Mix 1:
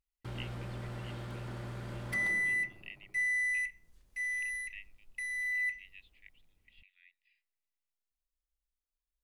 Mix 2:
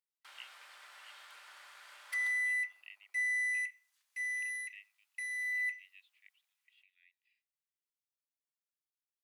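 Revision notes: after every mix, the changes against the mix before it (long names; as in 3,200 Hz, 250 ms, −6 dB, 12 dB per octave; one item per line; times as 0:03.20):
speech −4.0 dB
master: add Bessel high-pass filter 1,500 Hz, order 4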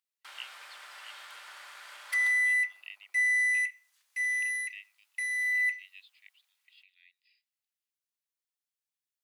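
speech: remove high-frequency loss of the air 490 metres
background +7.0 dB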